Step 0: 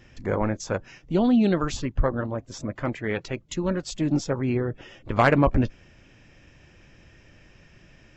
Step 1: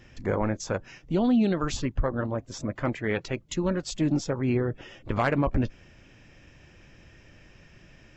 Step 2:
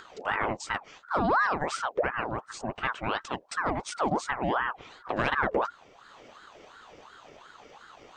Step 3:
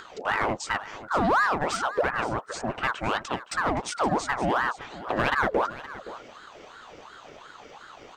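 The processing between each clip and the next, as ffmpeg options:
ffmpeg -i in.wav -af "alimiter=limit=-15.5dB:level=0:latency=1:release=181" out.wav
ffmpeg -i in.wav -af "acompressor=mode=upward:threshold=-41dB:ratio=2.5,aeval=exprs='val(0)*sin(2*PI*940*n/s+940*0.55/2.8*sin(2*PI*2.8*n/s))':channel_layout=same" out.wav
ffmpeg -i in.wav -filter_complex "[0:a]asplit=2[link_01][link_02];[link_02]asoftclip=type=hard:threshold=-28dB,volume=-3.5dB[link_03];[link_01][link_03]amix=inputs=2:normalize=0,aecho=1:1:519:0.168" out.wav

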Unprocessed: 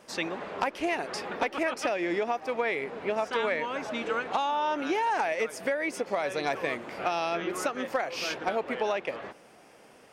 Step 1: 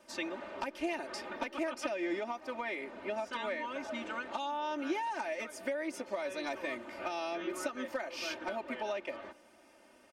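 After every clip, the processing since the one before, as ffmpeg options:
ffmpeg -i in.wav -filter_complex "[0:a]aecho=1:1:3.3:0.92,acrossover=split=450|3000[link_01][link_02][link_03];[link_02]acompressor=threshold=-26dB:ratio=6[link_04];[link_01][link_04][link_03]amix=inputs=3:normalize=0,volume=-9dB" out.wav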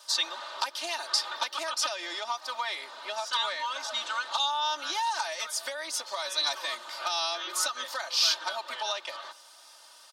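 ffmpeg -i in.wav -af "highpass=frequency=1100:width_type=q:width=1.8,volume=24dB,asoftclip=hard,volume=-24dB,highshelf=frequency=3000:width_type=q:width=3:gain=9,volume=6dB" out.wav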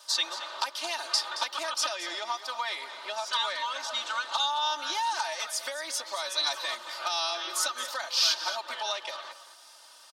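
ffmpeg -i in.wav -af "aecho=1:1:224:0.237" out.wav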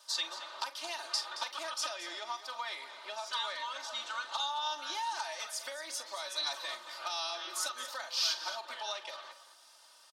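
ffmpeg -i in.wav -filter_complex "[0:a]asplit=2[link_01][link_02];[link_02]adelay=43,volume=-12dB[link_03];[link_01][link_03]amix=inputs=2:normalize=0,volume=-7dB" out.wav

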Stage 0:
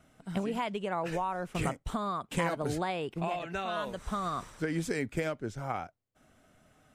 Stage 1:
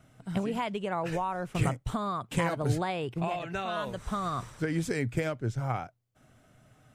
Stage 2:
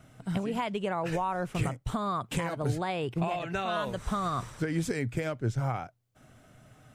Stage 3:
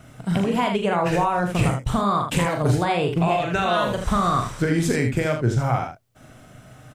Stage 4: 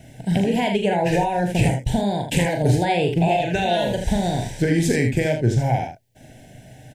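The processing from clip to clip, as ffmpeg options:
ffmpeg -i in.wav -af "equalizer=frequency=120:width=3.4:gain=13,volume=1dB" out.wav
ffmpeg -i in.wav -af "alimiter=limit=-23dB:level=0:latency=1:release=453,volume=4dB" out.wav
ffmpeg -i in.wav -af "aecho=1:1:40|78:0.501|0.447,volume=8.5dB" out.wav
ffmpeg -i in.wav -af "asuperstop=centerf=1200:order=8:qfactor=1.8,volume=2dB" out.wav

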